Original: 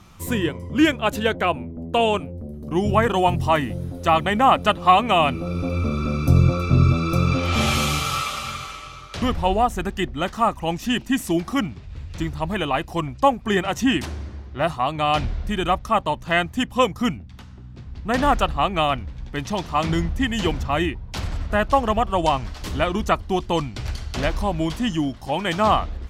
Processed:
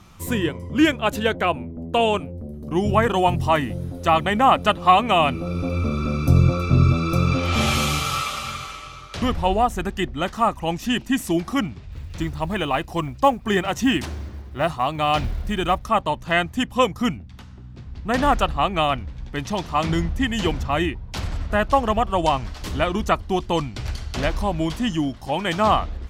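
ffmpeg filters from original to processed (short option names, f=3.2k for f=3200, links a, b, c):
-filter_complex "[0:a]asettb=1/sr,asplit=3[a][b][c];[a]atrim=end=11.924[d];[b]atrim=start=11.92:end=15.87,asetpts=PTS-STARTPTS,afade=t=in:d=0.004:c=qsin,afade=t=out:st=3.946:d=0.004:c=qsin,acrusher=bits=9:mode=log:mix=0:aa=0.000001[e];[c]atrim=start=15.866[f];[d][e]acrossfade=d=0.004:c1=hsin:c2=qsin[g];[g][f]acrossfade=d=0.004:c1=qsin:c2=hsin"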